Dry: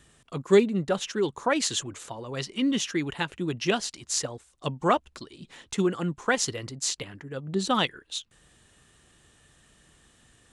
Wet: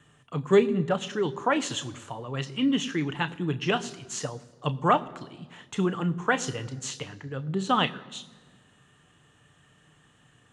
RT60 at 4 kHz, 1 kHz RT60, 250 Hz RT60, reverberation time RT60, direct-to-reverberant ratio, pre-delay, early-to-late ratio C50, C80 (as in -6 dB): 1.0 s, 1.3 s, 1.7 s, 1.4 s, 10.0 dB, 3 ms, 19.0 dB, 20.0 dB